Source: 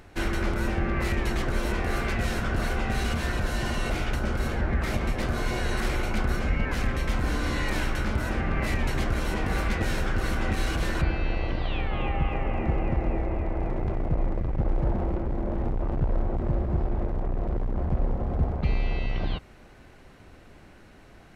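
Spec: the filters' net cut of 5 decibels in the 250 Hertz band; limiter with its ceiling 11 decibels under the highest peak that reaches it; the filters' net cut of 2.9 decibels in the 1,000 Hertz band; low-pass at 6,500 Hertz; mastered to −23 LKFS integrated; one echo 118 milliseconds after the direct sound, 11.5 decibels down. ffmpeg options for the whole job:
ffmpeg -i in.wav -af "lowpass=6500,equalizer=frequency=250:width_type=o:gain=-7,equalizer=frequency=1000:width_type=o:gain=-3.5,alimiter=level_in=1dB:limit=-24dB:level=0:latency=1,volume=-1dB,aecho=1:1:118:0.266,volume=12dB" out.wav

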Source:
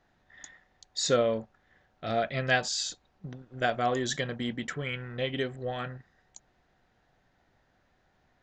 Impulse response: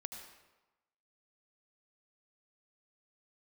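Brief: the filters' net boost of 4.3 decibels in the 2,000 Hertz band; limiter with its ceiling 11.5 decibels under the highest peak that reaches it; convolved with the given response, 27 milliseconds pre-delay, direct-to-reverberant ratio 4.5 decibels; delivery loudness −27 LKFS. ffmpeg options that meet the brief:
-filter_complex "[0:a]equalizer=frequency=2000:width_type=o:gain=5.5,alimiter=limit=-20dB:level=0:latency=1,asplit=2[link_01][link_02];[1:a]atrim=start_sample=2205,adelay=27[link_03];[link_02][link_03]afir=irnorm=-1:irlink=0,volume=-2dB[link_04];[link_01][link_04]amix=inputs=2:normalize=0,volume=4dB"

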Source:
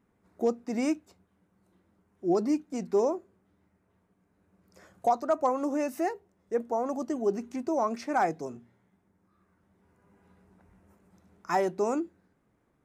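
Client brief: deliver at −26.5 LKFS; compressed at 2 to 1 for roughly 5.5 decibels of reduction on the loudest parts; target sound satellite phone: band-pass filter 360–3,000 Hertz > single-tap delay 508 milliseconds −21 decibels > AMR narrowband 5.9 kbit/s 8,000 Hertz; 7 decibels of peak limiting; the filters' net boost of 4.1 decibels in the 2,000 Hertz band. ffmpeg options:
ffmpeg -i in.wav -af "equalizer=frequency=2000:width_type=o:gain=6,acompressor=threshold=-30dB:ratio=2,alimiter=level_in=1.5dB:limit=-24dB:level=0:latency=1,volume=-1.5dB,highpass=360,lowpass=3000,aecho=1:1:508:0.0891,volume=13dB" -ar 8000 -c:a libopencore_amrnb -b:a 5900 out.amr

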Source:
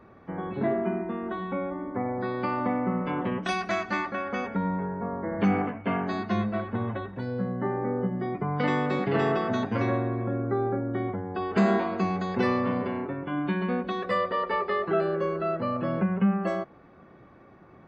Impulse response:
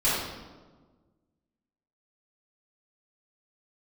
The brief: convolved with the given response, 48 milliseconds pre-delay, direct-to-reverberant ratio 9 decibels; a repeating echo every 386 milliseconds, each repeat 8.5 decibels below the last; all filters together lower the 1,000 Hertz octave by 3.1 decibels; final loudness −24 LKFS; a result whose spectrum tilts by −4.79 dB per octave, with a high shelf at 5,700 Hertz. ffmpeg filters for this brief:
-filter_complex "[0:a]equalizer=frequency=1000:width_type=o:gain=-4,highshelf=frequency=5700:gain=-4.5,aecho=1:1:386|772|1158|1544:0.376|0.143|0.0543|0.0206,asplit=2[link_01][link_02];[1:a]atrim=start_sample=2205,adelay=48[link_03];[link_02][link_03]afir=irnorm=-1:irlink=0,volume=-23dB[link_04];[link_01][link_04]amix=inputs=2:normalize=0,volume=4dB"

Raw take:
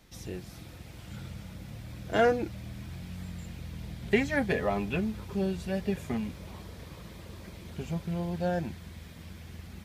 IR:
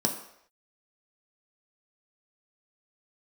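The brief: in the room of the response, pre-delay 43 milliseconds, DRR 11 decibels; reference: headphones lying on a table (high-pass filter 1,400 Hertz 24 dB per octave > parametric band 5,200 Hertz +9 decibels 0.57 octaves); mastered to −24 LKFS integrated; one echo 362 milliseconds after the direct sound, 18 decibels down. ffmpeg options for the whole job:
-filter_complex "[0:a]aecho=1:1:362:0.126,asplit=2[link_01][link_02];[1:a]atrim=start_sample=2205,adelay=43[link_03];[link_02][link_03]afir=irnorm=-1:irlink=0,volume=-19dB[link_04];[link_01][link_04]amix=inputs=2:normalize=0,highpass=frequency=1400:width=0.5412,highpass=frequency=1400:width=1.3066,equalizer=frequency=5200:width_type=o:width=0.57:gain=9,volume=17.5dB"

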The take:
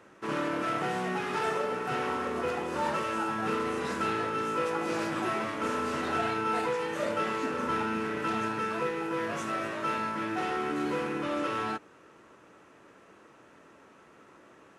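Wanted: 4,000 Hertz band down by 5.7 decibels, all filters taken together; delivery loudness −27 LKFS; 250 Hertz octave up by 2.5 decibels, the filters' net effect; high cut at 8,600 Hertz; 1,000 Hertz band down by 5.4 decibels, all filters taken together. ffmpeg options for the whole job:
ffmpeg -i in.wav -af "lowpass=8600,equalizer=frequency=250:width_type=o:gain=4,equalizer=frequency=1000:width_type=o:gain=-7.5,equalizer=frequency=4000:width_type=o:gain=-7.5,volume=5.5dB" out.wav

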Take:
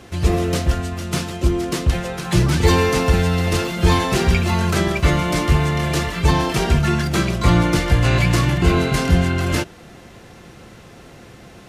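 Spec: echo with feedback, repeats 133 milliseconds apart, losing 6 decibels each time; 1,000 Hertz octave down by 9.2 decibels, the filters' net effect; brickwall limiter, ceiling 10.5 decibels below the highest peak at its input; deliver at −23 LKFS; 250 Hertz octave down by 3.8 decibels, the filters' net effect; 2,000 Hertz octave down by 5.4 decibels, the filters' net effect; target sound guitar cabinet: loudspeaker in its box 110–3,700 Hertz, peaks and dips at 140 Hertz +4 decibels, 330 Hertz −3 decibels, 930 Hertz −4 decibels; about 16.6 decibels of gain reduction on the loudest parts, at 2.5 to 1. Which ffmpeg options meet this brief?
ffmpeg -i in.wav -af "equalizer=frequency=250:width_type=o:gain=-5.5,equalizer=frequency=1000:width_type=o:gain=-8.5,equalizer=frequency=2000:width_type=o:gain=-4,acompressor=threshold=-37dB:ratio=2.5,alimiter=level_in=6.5dB:limit=-24dB:level=0:latency=1,volume=-6.5dB,highpass=110,equalizer=frequency=140:width_type=q:width=4:gain=4,equalizer=frequency=330:width_type=q:width=4:gain=-3,equalizer=frequency=930:width_type=q:width=4:gain=-4,lowpass=frequency=3700:width=0.5412,lowpass=frequency=3700:width=1.3066,aecho=1:1:133|266|399|532|665|798:0.501|0.251|0.125|0.0626|0.0313|0.0157,volume=17.5dB" out.wav

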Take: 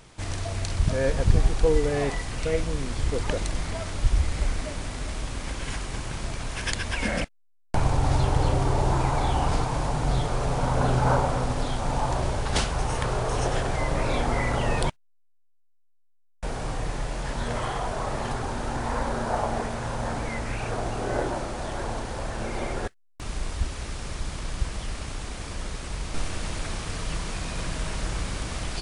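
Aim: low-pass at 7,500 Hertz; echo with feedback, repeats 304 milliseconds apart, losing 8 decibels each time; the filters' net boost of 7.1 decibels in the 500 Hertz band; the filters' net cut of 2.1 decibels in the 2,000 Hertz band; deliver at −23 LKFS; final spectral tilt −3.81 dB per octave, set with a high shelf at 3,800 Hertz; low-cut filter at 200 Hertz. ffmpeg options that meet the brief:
ffmpeg -i in.wav -af "highpass=200,lowpass=7500,equalizer=frequency=500:width_type=o:gain=8.5,equalizer=frequency=2000:width_type=o:gain=-5.5,highshelf=frequency=3800:gain=9,aecho=1:1:304|608|912|1216|1520:0.398|0.159|0.0637|0.0255|0.0102,volume=3dB" out.wav

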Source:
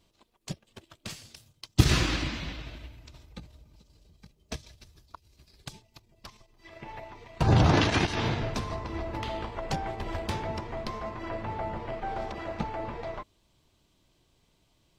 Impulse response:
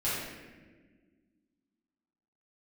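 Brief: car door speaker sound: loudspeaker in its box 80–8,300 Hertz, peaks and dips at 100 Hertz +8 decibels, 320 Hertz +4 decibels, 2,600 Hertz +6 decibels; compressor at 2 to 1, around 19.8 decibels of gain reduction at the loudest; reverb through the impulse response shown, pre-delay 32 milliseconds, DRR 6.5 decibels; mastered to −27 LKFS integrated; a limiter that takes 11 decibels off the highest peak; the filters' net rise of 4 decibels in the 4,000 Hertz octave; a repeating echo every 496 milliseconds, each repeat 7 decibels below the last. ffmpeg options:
-filter_complex "[0:a]equalizer=frequency=4000:width_type=o:gain=3.5,acompressor=threshold=-51dB:ratio=2,alimiter=level_in=10dB:limit=-24dB:level=0:latency=1,volume=-10dB,aecho=1:1:496|992|1488|1984|2480:0.447|0.201|0.0905|0.0407|0.0183,asplit=2[link_01][link_02];[1:a]atrim=start_sample=2205,adelay=32[link_03];[link_02][link_03]afir=irnorm=-1:irlink=0,volume=-15dB[link_04];[link_01][link_04]amix=inputs=2:normalize=0,highpass=80,equalizer=frequency=100:width_type=q:width=4:gain=8,equalizer=frequency=320:width_type=q:width=4:gain=4,equalizer=frequency=2600:width_type=q:width=4:gain=6,lowpass=frequency=8300:width=0.5412,lowpass=frequency=8300:width=1.3066,volume=17dB"

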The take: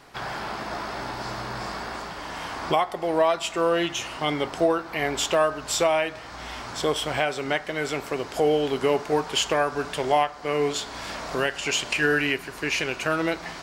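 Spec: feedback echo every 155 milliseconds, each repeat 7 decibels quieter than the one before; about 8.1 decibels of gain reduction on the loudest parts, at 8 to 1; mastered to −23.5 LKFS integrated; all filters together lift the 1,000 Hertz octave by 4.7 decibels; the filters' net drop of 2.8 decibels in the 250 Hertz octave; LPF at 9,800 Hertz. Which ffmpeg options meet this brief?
ffmpeg -i in.wav -af "lowpass=9800,equalizer=frequency=250:width_type=o:gain=-4.5,equalizer=frequency=1000:width_type=o:gain=6.5,acompressor=threshold=-21dB:ratio=8,aecho=1:1:155|310|465|620|775:0.447|0.201|0.0905|0.0407|0.0183,volume=3dB" out.wav

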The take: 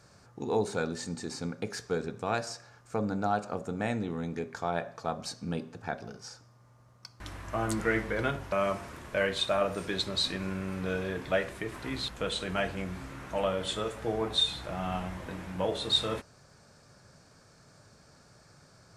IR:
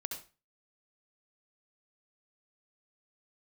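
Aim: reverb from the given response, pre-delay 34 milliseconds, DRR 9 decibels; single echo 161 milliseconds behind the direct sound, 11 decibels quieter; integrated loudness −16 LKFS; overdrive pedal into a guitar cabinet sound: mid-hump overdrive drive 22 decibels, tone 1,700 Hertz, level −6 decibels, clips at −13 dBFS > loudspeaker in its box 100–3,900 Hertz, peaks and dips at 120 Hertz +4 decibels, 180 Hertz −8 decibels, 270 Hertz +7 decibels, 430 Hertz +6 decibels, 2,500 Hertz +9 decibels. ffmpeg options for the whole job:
-filter_complex "[0:a]aecho=1:1:161:0.282,asplit=2[link_01][link_02];[1:a]atrim=start_sample=2205,adelay=34[link_03];[link_02][link_03]afir=irnorm=-1:irlink=0,volume=-9dB[link_04];[link_01][link_04]amix=inputs=2:normalize=0,asplit=2[link_05][link_06];[link_06]highpass=frequency=720:poles=1,volume=22dB,asoftclip=type=tanh:threshold=-13dB[link_07];[link_05][link_07]amix=inputs=2:normalize=0,lowpass=frequency=1700:poles=1,volume=-6dB,highpass=100,equalizer=frequency=120:width_type=q:width=4:gain=4,equalizer=frequency=180:width_type=q:width=4:gain=-8,equalizer=frequency=270:width_type=q:width=4:gain=7,equalizer=frequency=430:width_type=q:width=4:gain=6,equalizer=frequency=2500:width_type=q:width=4:gain=9,lowpass=frequency=3900:width=0.5412,lowpass=frequency=3900:width=1.3066,volume=7.5dB"

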